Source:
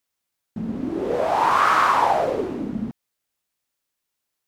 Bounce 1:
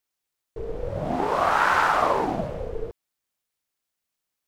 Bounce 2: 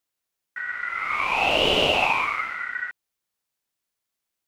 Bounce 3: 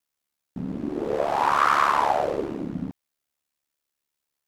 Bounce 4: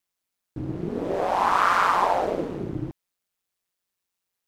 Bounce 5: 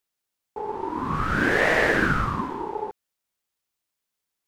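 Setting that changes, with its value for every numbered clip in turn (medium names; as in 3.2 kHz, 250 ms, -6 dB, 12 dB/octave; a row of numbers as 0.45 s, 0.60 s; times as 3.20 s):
ring modulator, frequency: 230 Hz, 1.7 kHz, 36 Hz, 91 Hz, 640 Hz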